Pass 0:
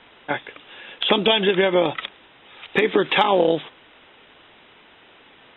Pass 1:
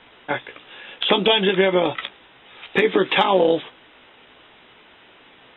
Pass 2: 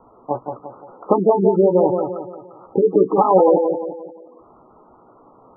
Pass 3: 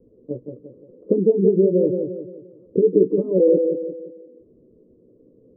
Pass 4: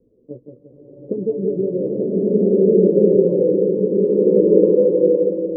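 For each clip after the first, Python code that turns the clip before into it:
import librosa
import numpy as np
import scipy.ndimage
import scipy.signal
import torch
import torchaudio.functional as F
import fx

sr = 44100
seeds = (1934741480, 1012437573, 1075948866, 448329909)

y1 = fx.doubler(x, sr, ms=16.0, db=-8.0)
y2 = scipy.signal.sosfilt(scipy.signal.butter(12, 1300.0, 'lowpass', fs=sr, output='sos'), y1)
y2 = fx.echo_feedback(y2, sr, ms=174, feedback_pct=42, wet_db=-5.5)
y2 = fx.spec_gate(y2, sr, threshold_db=-15, keep='strong')
y2 = y2 * 10.0 ** (3.5 / 20.0)
y3 = scipy.signal.sosfilt(scipy.signal.ellip(4, 1.0, 40, 500.0, 'lowpass', fs=sr, output='sos'), y2)
y4 = fx.rev_bloom(y3, sr, seeds[0], attack_ms=1540, drr_db=-10.0)
y4 = y4 * 10.0 ** (-5.0 / 20.0)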